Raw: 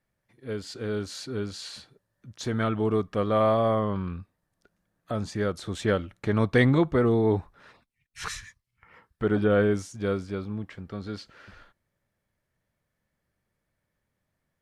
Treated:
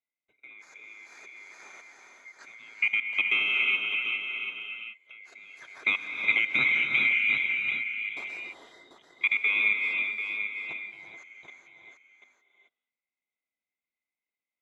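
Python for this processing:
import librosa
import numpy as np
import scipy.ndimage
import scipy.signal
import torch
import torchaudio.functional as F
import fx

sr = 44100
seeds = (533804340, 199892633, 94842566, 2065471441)

y = fx.band_swap(x, sr, width_hz=2000)
y = fx.level_steps(y, sr, step_db=24)
y = fx.bandpass_q(y, sr, hz=700.0, q=0.82)
y = fx.transient(y, sr, attack_db=5, sustain_db=-5)
y = y + 10.0 ** (-8.0 / 20.0) * np.pad(y, (int(739 * sr / 1000.0), 0))[:len(y)]
y = fx.rev_gated(y, sr, seeds[0], gate_ms=460, shape='rising', drr_db=2.5)
y = y * librosa.db_to_amplitude(6.0)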